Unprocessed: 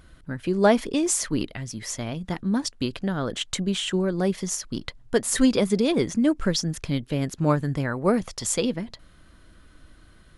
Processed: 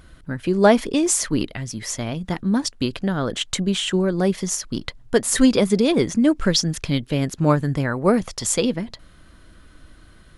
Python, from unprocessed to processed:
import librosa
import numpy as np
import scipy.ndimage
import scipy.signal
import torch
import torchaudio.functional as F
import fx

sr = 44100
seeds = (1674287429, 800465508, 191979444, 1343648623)

y = fx.dynamic_eq(x, sr, hz=3600.0, q=0.73, threshold_db=-41.0, ratio=4.0, max_db=4, at=(6.32, 7.2), fade=0.02)
y = F.gain(torch.from_numpy(y), 4.0).numpy()